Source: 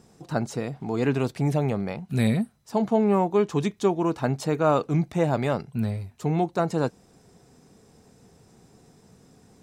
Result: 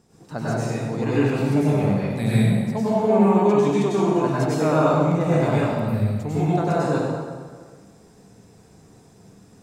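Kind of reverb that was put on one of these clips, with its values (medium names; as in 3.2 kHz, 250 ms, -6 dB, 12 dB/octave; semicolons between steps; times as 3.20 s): plate-style reverb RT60 1.6 s, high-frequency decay 0.75×, pre-delay 85 ms, DRR -8.5 dB; trim -5 dB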